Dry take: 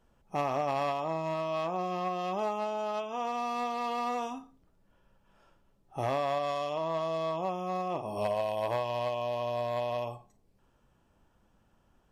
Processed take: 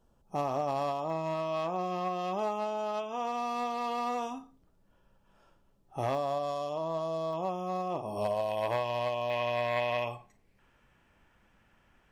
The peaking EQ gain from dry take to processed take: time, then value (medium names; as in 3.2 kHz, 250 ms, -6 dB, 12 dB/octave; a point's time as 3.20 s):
peaking EQ 2.1 kHz 1 oct
-9.5 dB
from 1.10 s -2 dB
from 6.15 s -14 dB
from 7.33 s -5.5 dB
from 8.50 s +3.5 dB
from 9.30 s +14.5 dB